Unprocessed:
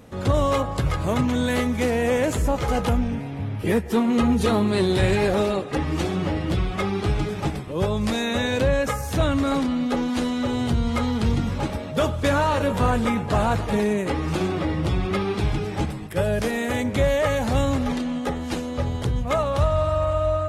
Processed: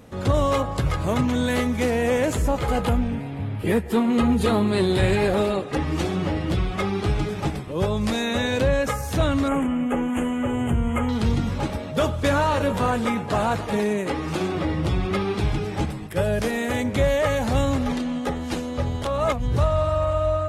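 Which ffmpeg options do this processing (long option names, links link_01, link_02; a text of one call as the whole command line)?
ffmpeg -i in.wav -filter_complex "[0:a]asettb=1/sr,asplit=3[link_01][link_02][link_03];[link_01]atrim=end=2.584[link_04];[link_02]atrim=start=2.58:end=5.63,asetpts=PTS-STARTPTS,afade=type=in:duration=0.004:curve=qsin,afade=type=out:start_time=3.046:duration=0.004:curve=qsin,equalizer=frequency=5800:width=5.2:gain=-9[link_05];[link_03]atrim=start=5.626[link_06];[link_04][link_05]acrossfade=duration=0.004:curve1=hsin:curve2=qsin[link_07];[link_07][link_06]acrossfade=duration=0.004:curve1=qsin:curve2=hsin,asettb=1/sr,asplit=3[link_08][link_09][link_10];[link_08]atrim=end=9.484[link_11];[link_09]atrim=start=9.48:end=11.09,asetpts=PTS-STARTPTS,afade=type=in:duration=0.004:curve=qsin,afade=type=out:start_time=1.606:duration=0.004:curve=qsin,asuperstop=centerf=4600:order=8:qfactor=1.2[link_12];[link_10]atrim=start=11.086[link_13];[link_11][link_12]acrossfade=duration=0.004:curve1=hsin:curve2=qsin[link_14];[link_14][link_13]acrossfade=duration=0.004:curve1=qsin:curve2=hsin,asettb=1/sr,asplit=3[link_15][link_16][link_17];[link_15]atrim=end=12.784[link_18];[link_16]atrim=start=12.78:end=14.55,asetpts=PTS-STARTPTS,afade=type=in:duration=0.004:curve=qsin,afade=type=out:start_time=1.766:duration=0.004:curve=qsin,highpass=frequency=150:poles=1[link_19];[link_17]atrim=start=14.546[link_20];[link_18][link_19]acrossfade=duration=0.004:curve1=hsin:curve2=qsin[link_21];[link_21][link_20]acrossfade=duration=0.004:curve1=qsin:curve2=hsin,asplit=3[link_22][link_23][link_24];[link_22]atrim=end=19.052[link_25];[link_23]atrim=start=19.048:end=19.582,asetpts=PTS-STARTPTS,areverse[link_26];[link_24]atrim=start=19.578[link_27];[link_25][link_26]acrossfade=duration=0.004:curve1=hsin:curve2=hsin[link_28];[link_28][link_27]acrossfade=duration=0.004:curve1=hsin:curve2=hsin" out.wav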